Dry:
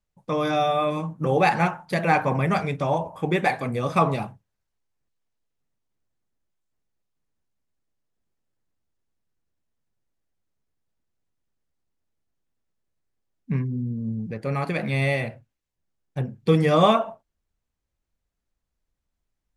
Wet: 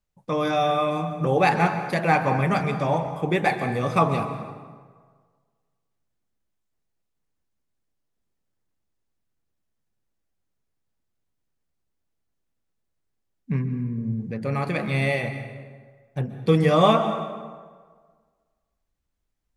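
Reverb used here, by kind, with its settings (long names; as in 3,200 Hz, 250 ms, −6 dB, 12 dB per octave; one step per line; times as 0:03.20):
dense smooth reverb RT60 1.6 s, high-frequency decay 0.65×, pre-delay 115 ms, DRR 9 dB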